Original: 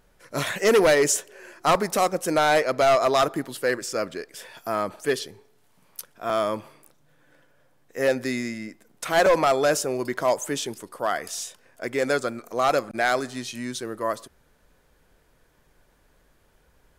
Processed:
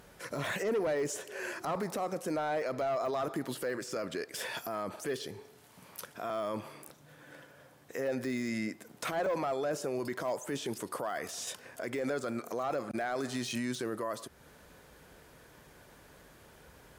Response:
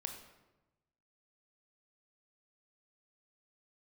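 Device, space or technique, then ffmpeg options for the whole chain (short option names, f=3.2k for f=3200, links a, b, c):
podcast mastering chain: -af "highpass=72,deesser=0.9,acompressor=threshold=-42dB:ratio=2,alimiter=level_in=9.5dB:limit=-24dB:level=0:latency=1:release=18,volume=-9.5dB,volume=8dB" -ar 48000 -c:a libmp3lame -b:a 128k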